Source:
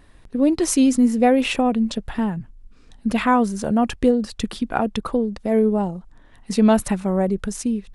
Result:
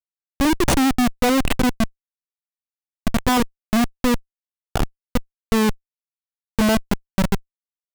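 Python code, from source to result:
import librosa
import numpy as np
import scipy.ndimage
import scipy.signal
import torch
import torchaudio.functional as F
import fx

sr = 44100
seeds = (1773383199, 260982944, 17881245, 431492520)

y = fx.bin_expand(x, sr, power=1.5)
y = fx.schmitt(y, sr, flips_db=-18.5)
y = y * librosa.db_to_amplitude(7.0)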